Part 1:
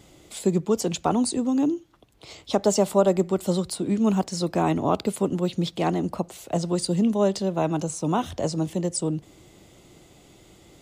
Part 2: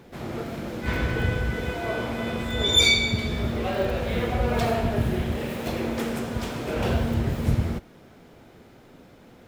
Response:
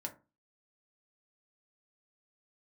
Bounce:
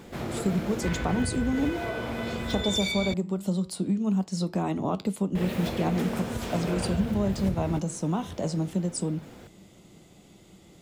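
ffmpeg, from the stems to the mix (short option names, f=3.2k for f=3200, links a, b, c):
-filter_complex "[0:a]equalizer=f=190:w=3.1:g=10,acompressor=threshold=-21dB:ratio=4,flanger=delay=9:depth=6.4:regen=-80:speed=0.21:shape=triangular,volume=1dB[a];[1:a]acompressor=threshold=-31dB:ratio=6,volume=2.5dB,asplit=3[b][c][d];[b]atrim=end=3.14,asetpts=PTS-STARTPTS,afade=t=out:st=3.136:d=0.004:c=hsin[e];[c]atrim=start=3.14:end=5.35,asetpts=PTS-STARTPTS,volume=0[f];[d]atrim=start=5.35,asetpts=PTS-STARTPTS,afade=t=in:d=0.004:c=hsin[g];[e][f][g]concat=n=3:v=0:a=1[h];[a][h]amix=inputs=2:normalize=0"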